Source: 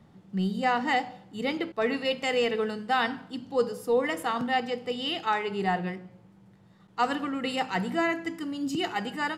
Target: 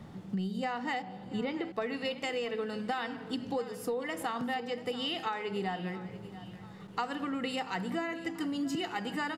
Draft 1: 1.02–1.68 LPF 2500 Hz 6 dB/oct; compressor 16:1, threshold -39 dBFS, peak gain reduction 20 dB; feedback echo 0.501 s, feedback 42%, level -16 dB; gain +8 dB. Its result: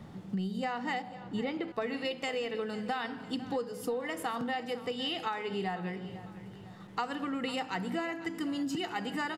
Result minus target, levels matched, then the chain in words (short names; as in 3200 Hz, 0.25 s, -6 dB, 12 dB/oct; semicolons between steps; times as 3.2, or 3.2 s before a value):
echo 0.185 s early
1.02–1.68 LPF 2500 Hz 6 dB/oct; compressor 16:1, threshold -39 dBFS, peak gain reduction 20 dB; feedback echo 0.686 s, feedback 42%, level -16 dB; gain +8 dB